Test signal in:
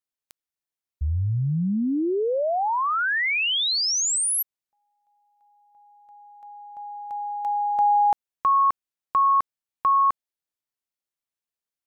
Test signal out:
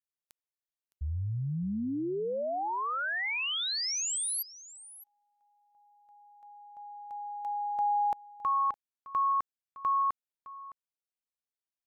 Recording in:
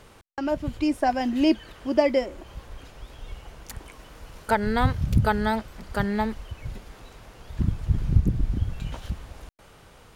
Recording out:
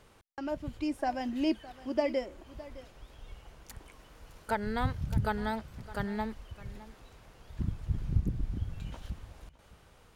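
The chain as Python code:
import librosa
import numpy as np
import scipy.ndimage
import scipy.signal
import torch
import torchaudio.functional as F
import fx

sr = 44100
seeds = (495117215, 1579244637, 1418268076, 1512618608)

y = x + 10.0 ** (-17.5 / 20.0) * np.pad(x, (int(612 * sr / 1000.0), 0))[:len(x)]
y = F.gain(torch.from_numpy(y), -9.0).numpy()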